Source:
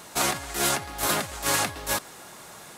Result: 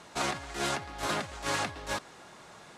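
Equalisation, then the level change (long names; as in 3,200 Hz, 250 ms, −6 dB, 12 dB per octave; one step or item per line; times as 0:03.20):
high-frequency loss of the air 83 metres
−4.5 dB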